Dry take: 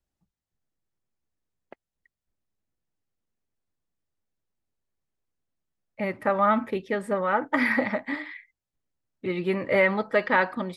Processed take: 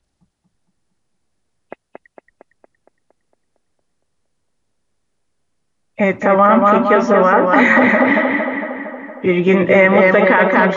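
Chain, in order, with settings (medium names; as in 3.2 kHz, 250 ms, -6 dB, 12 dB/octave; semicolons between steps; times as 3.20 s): knee-point frequency compression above 2.5 kHz 1.5:1; tape echo 230 ms, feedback 66%, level -3 dB, low-pass 2.6 kHz; loudness maximiser +15 dB; trim -1 dB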